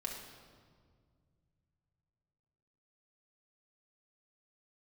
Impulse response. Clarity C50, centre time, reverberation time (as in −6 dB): 3.0 dB, 54 ms, 1.9 s